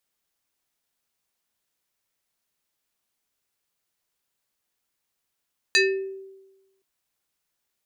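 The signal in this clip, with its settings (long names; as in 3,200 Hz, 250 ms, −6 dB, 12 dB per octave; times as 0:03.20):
two-operator FM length 1.07 s, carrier 386 Hz, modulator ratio 5.65, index 2.7, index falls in 0.52 s exponential, decay 1.11 s, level −13.5 dB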